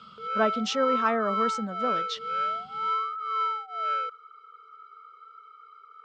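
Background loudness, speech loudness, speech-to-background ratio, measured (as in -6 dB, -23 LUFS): -29.5 LUFS, -29.0 LUFS, 0.5 dB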